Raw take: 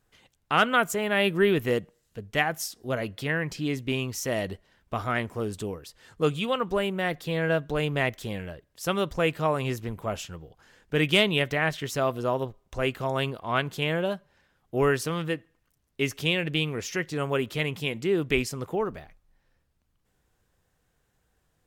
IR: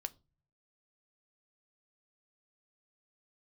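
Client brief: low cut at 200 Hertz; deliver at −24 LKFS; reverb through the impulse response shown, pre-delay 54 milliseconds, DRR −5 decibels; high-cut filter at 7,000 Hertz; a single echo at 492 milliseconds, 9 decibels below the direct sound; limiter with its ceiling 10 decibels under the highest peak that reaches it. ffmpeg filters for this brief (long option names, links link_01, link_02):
-filter_complex "[0:a]highpass=200,lowpass=7000,alimiter=limit=-17dB:level=0:latency=1,aecho=1:1:492:0.355,asplit=2[link_01][link_02];[1:a]atrim=start_sample=2205,adelay=54[link_03];[link_02][link_03]afir=irnorm=-1:irlink=0,volume=7dB[link_04];[link_01][link_04]amix=inputs=2:normalize=0,volume=0.5dB"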